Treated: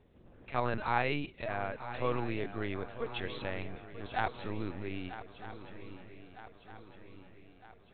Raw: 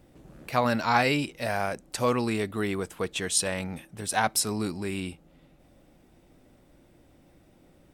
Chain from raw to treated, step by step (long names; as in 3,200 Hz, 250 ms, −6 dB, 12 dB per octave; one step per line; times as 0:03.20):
linear-prediction vocoder at 8 kHz pitch kept
feedback echo with a long and a short gap by turns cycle 1,258 ms, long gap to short 3 to 1, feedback 52%, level −13 dB
level −7.5 dB